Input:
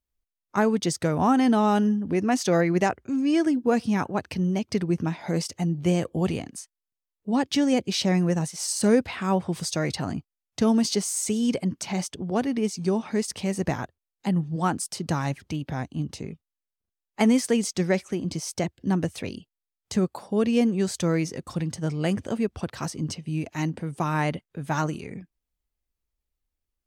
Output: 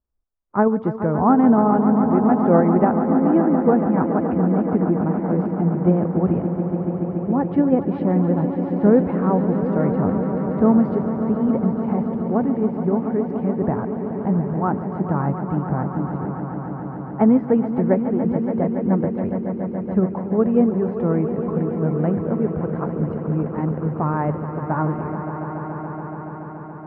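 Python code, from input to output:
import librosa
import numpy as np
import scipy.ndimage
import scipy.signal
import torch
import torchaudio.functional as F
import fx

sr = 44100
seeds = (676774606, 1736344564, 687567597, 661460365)

p1 = scipy.signal.sosfilt(scipy.signal.butter(4, 1300.0, 'lowpass', fs=sr, output='sos'), x)
p2 = fx.level_steps(p1, sr, step_db=10)
p3 = p1 + (p2 * 10.0 ** (0.5 / 20.0))
y = fx.echo_swell(p3, sr, ms=142, loudest=5, wet_db=-11.5)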